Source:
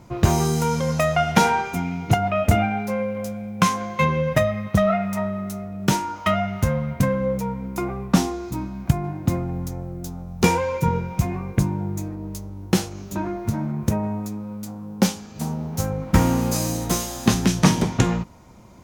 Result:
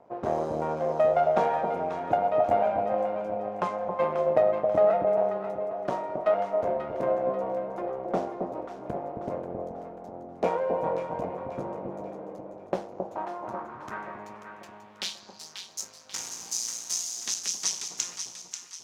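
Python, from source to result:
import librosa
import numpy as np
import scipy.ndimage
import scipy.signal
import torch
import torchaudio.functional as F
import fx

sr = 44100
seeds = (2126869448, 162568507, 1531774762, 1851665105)

p1 = np.maximum(x, 0.0)
p2 = fx.filter_sweep_bandpass(p1, sr, from_hz=610.0, to_hz=6000.0, start_s=12.89, end_s=15.68, q=2.8)
p3 = fx.hum_notches(p2, sr, base_hz=50, count=4)
p4 = p3 + fx.echo_alternate(p3, sr, ms=269, hz=950.0, feedback_pct=66, wet_db=-4.0, dry=0)
y = F.gain(torch.from_numpy(p4), 5.5).numpy()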